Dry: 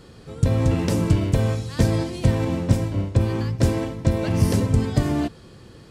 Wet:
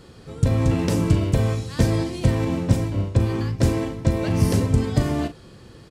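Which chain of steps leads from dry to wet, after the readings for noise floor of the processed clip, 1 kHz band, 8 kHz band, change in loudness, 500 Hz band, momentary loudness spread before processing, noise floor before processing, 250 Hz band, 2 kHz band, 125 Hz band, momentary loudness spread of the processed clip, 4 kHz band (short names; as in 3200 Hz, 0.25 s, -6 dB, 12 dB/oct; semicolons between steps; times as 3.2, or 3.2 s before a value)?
-46 dBFS, 0.0 dB, +0.5 dB, 0.0 dB, 0.0 dB, 4 LU, -46 dBFS, 0.0 dB, +0.5 dB, 0.0 dB, 4 LU, 0.0 dB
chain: doubler 39 ms -11 dB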